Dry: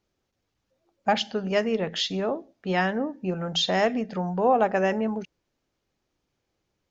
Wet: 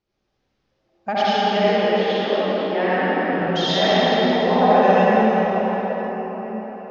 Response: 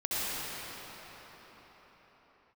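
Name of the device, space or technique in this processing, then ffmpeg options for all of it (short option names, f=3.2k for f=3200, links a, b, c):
cathedral: -filter_complex "[0:a]lowpass=f=5.7k:w=0.5412,lowpass=f=5.7k:w=1.3066,asettb=1/sr,asplit=3[a][b][c];[a]atrim=end=1.574[d];[b]atrim=start=1.57:end=3.33,asetpts=PTS-STARTPTS,afade=t=in:d=0.004:c=qsin,afade=t=out:st=1.756:d=0.004:c=qsin,acrossover=split=210 2800:gain=0.0891 1 0.178[e][f][g];[e][f][g]amix=inputs=3:normalize=0[h];[c]atrim=start=3.326[i];[d][h]acrossfade=d=0.004:c1=hsin:c2=qsin[j];[j][i]acrossfade=d=0.004:c1=qsin:c2=hsin[k];[1:a]atrim=start_sample=2205[l];[k][l]afir=irnorm=-1:irlink=0,volume=-1.5dB"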